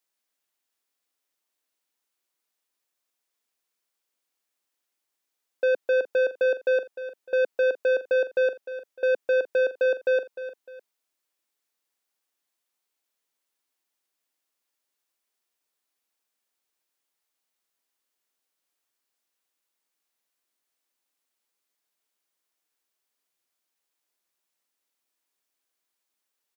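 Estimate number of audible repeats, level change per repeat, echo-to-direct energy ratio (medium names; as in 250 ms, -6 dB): 2, -9.0 dB, -12.5 dB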